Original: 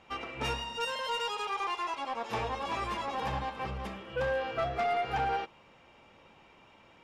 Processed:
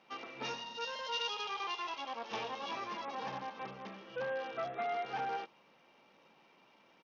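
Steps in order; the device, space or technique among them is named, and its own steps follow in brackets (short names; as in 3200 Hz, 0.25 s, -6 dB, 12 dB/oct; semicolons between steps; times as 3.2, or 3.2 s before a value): 1.12–2.72 dynamic EQ 3100 Hz, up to +8 dB, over -53 dBFS, Q 2.7; Bluetooth headset (HPF 160 Hz 24 dB/oct; downsampling 16000 Hz; gain -6.5 dB; SBC 64 kbps 48000 Hz)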